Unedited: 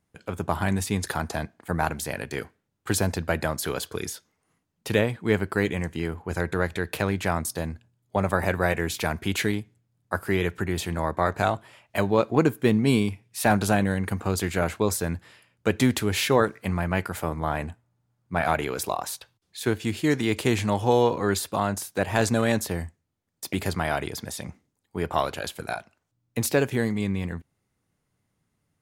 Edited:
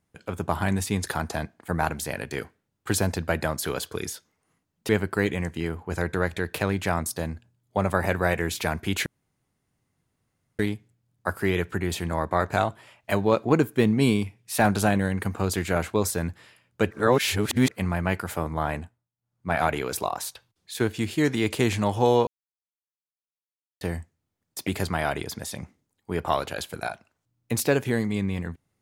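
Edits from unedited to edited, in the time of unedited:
4.89–5.28 s: delete
9.45 s: insert room tone 1.53 s
15.77–16.57 s: reverse
17.60–18.39 s: dip -22 dB, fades 0.35 s
21.13–22.67 s: mute

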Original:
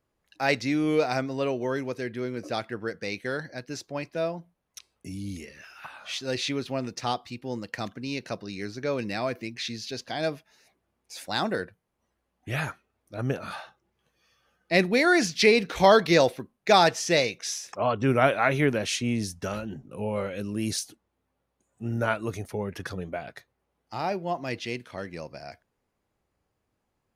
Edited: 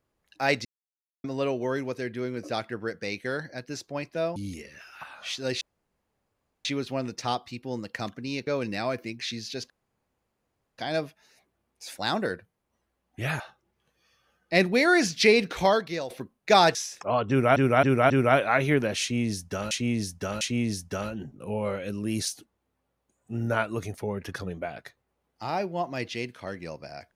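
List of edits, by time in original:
0.65–1.24 s: mute
4.36–5.19 s: delete
6.44 s: insert room tone 1.04 s
8.26–8.84 s: delete
10.07 s: insert room tone 1.08 s
12.69–13.59 s: delete
15.71–16.29 s: fade out quadratic, to -14 dB
16.94–17.47 s: delete
18.01–18.28 s: loop, 4 plays
18.92–19.62 s: loop, 3 plays

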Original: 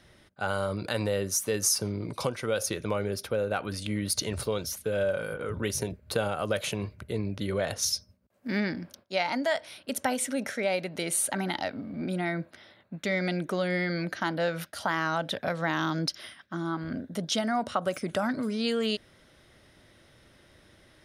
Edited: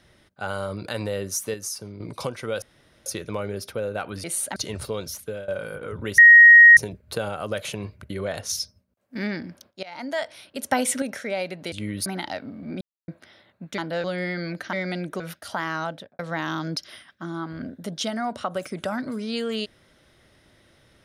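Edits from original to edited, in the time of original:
1.54–2.00 s: gain -7 dB
2.62 s: insert room tone 0.44 s
3.80–4.14 s: swap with 11.05–11.37 s
4.75–5.06 s: fade out equal-power, to -20 dB
5.76 s: add tone 1.88 kHz -6 dBFS 0.59 s
7.09–7.43 s: delete
7.96–8.48 s: fade out linear, to -6.5 dB
9.16–9.50 s: fade in, from -22 dB
10.05–10.35 s: gain +6 dB
12.12–12.39 s: mute
13.09–13.56 s: swap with 14.25–14.51 s
15.13–15.50 s: studio fade out

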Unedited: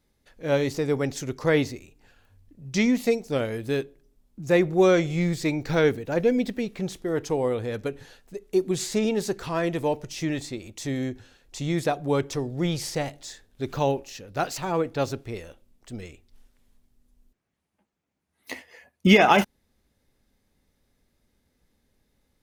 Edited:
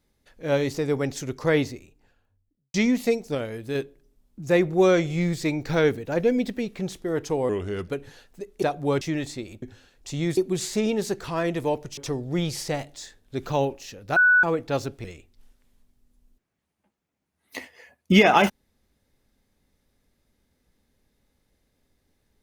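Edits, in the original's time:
1.54–2.74 s: studio fade out
3.35–3.75 s: gain -3.5 dB
7.49–7.82 s: speed 84%
8.56–10.16 s: swap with 11.85–12.24 s
10.77–11.10 s: delete
14.43–14.70 s: bleep 1.48 kHz -13.5 dBFS
15.31–15.99 s: delete

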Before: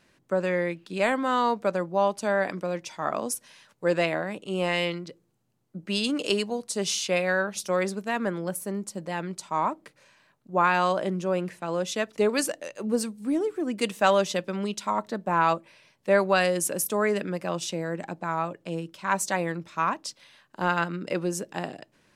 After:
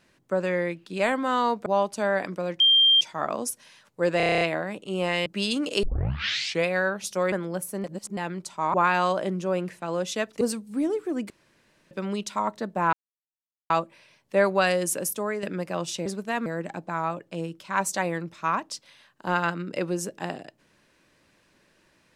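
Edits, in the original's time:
1.66–1.91 s: delete
2.85 s: add tone 3.18 kHz -14.5 dBFS 0.41 s
4.01 s: stutter 0.03 s, 9 plays
4.86–5.79 s: delete
6.36 s: tape start 0.83 s
7.85–8.25 s: move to 17.80 s
8.77–9.10 s: reverse
9.67–10.54 s: delete
12.21–12.92 s: delete
13.81–14.42 s: room tone
15.44 s: insert silence 0.77 s
16.74–17.17 s: fade out linear, to -8.5 dB

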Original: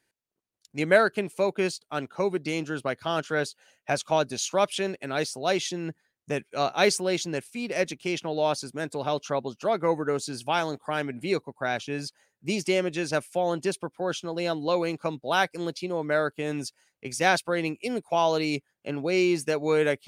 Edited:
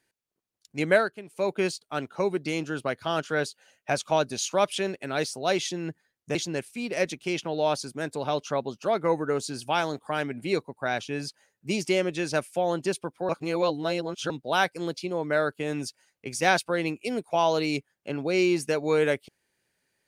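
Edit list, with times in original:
0.90–1.51 s: dip -13 dB, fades 0.26 s
6.35–7.14 s: delete
14.08–15.09 s: reverse

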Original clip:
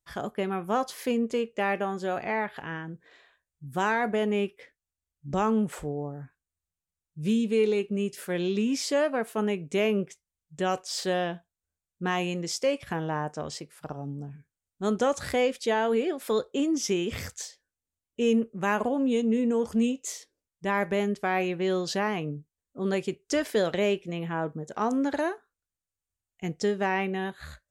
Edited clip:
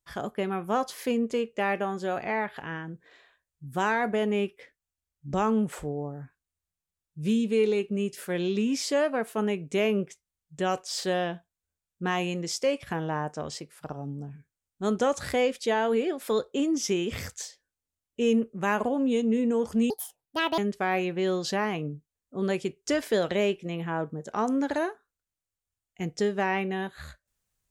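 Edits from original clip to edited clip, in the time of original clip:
19.90–21.01 s: speed 163%

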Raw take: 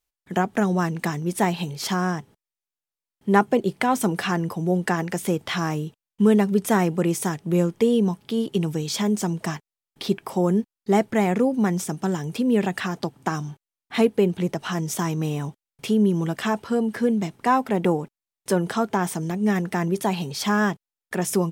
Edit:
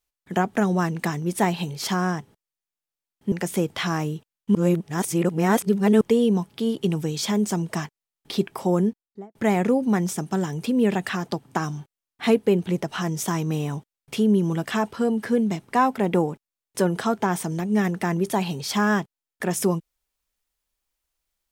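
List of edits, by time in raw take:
3.32–5.03 s: delete
6.26–7.72 s: reverse
10.46–11.06 s: studio fade out

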